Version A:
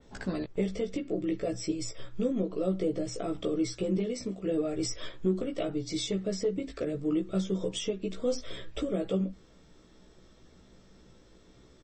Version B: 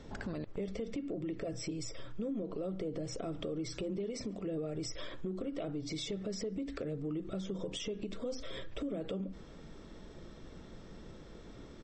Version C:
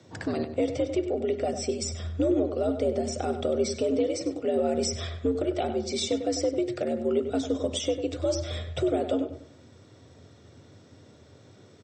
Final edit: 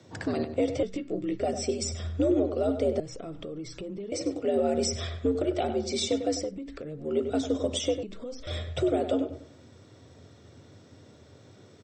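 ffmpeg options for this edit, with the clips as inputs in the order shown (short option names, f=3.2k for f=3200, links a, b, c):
-filter_complex "[1:a]asplit=3[a][b][c];[2:a]asplit=5[d][e][f][g][h];[d]atrim=end=0.832[i];[0:a]atrim=start=0.828:end=1.402[j];[e]atrim=start=1.398:end=3.002[k];[a]atrim=start=2.998:end=4.122[l];[f]atrim=start=4.118:end=6.56[m];[b]atrim=start=6.32:end=7.21[n];[g]atrim=start=6.97:end=8.032[o];[c]atrim=start=8.028:end=8.472[p];[h]atrim=start=8.468[q];[i][j]acrossfade=d=0.004:c1=hsin:c2=hsin[r];[r][k]acrossfade=d=0.004:c1=hsin:c2=hsin[s];[s][l]acrossfade=d=0.004:c1=hsin:c2=hsin[t];[t][m]acrossfade=d=0.004:c1=hsin:c2=hsin[u];[u][n]acrossfade=d=0.24:c1=tri:c2=tri[v];[v][o]acrossfade=d=0.24:c1=tri:c2=tri[w];[w][p]acrossfade=d=0.004:c1=hsin:c2=hsin[x];[x][q]acrossfade=d=0.004:c1=hsin:c2=hsin"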